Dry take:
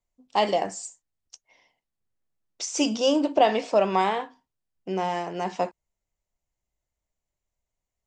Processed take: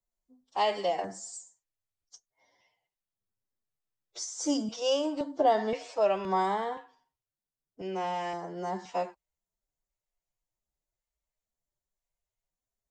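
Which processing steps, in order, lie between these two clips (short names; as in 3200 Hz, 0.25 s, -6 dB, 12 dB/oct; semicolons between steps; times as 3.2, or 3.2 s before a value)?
time stretch by phase-locked vocoder 1.6×; LFO notch square 0.96 Hz 240–2600 Hz; gain -5 dB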